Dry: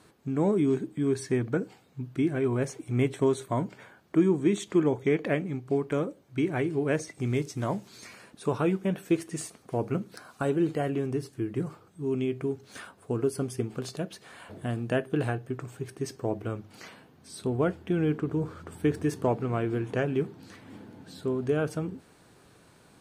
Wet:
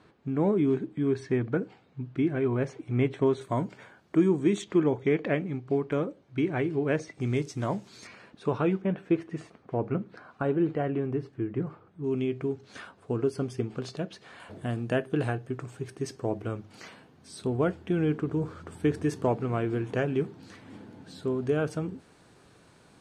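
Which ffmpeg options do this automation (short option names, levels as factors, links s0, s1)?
-af "asetnsamples=n=441:p=0,asendcmd='3.41 lowpass f 8300;4.62 lowpass f 4500;7.21 lowpass f 7700;8.07 lowpass f 4000;8.82 lowpass f 2300;12.04 lowpass f 5500;14.4 lowpass f 9000',lowpass=3500"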